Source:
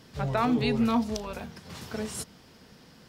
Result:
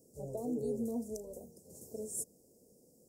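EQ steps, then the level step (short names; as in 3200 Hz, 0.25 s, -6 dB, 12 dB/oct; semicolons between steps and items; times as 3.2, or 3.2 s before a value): elliptic band-stop 520–7600 Hz, stop band 50 dB; tone controls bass -14 dB, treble +4 dB; -3.5 dB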